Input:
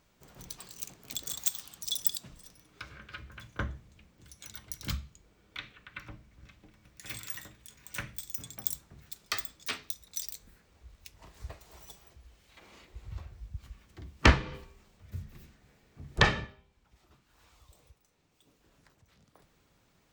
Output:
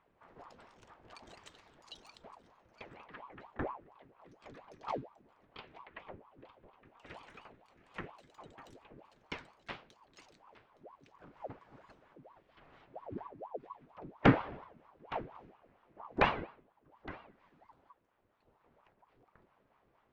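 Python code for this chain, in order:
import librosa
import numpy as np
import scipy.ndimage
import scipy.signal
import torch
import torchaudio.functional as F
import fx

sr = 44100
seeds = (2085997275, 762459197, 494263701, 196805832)

y = scipy.signal.sosfilt(scipy.signal.butter(2, 1600.0, 'lowpass', fs=sr, output='sos'), x)
y = y + 10.0 ** (-18.0 / 20.0) * np.pad(y, (int(865 * sr / 1000.0), 0))[:len(y)]
y = fx.ring_lfo(y, sr, carrier_hz=630.0, swing_pct=70, hz=4.3)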